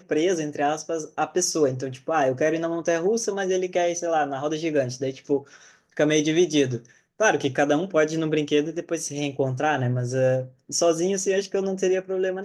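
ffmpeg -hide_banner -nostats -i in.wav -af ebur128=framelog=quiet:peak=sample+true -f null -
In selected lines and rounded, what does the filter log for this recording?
Integrated loudness:
  I:         -24.0 LUFS
  Threshold: -34.2 LUFS
Loudness range:
  LRA:         2.0 LU
  Threshold: -44.1 LUFS
  LRA low:   -25.0 LUFS
  LRA high:  -23.0 LUFS
Sample peak:
  Peak:       -7.6 dBFS
True peak:
  Peak:       -7.6 dBFS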